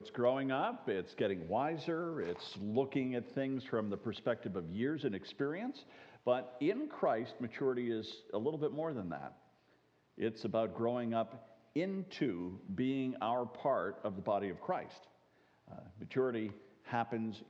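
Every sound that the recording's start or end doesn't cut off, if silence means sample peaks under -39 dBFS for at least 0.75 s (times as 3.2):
10.2–14.83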